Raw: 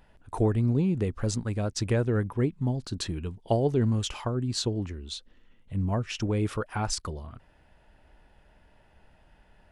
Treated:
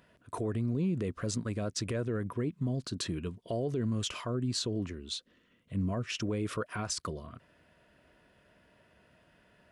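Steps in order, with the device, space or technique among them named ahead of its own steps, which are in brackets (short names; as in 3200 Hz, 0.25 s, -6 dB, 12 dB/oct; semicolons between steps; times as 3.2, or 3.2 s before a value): PA system with an anti-feedback notch (HPF 120 Hz 12 dB/oct; Butterworth band-stop 830 Hz, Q 4.2; limiter -23.5 dBFS, peak gain reduction 10.5 dB)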